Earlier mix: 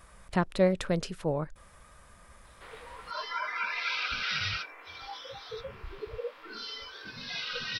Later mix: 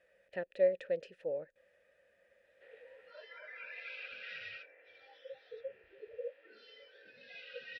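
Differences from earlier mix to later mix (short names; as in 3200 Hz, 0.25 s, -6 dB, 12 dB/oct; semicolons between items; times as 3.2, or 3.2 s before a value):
background: add high shelf 5400 Hz -6.5 dB; master: add vowel filter e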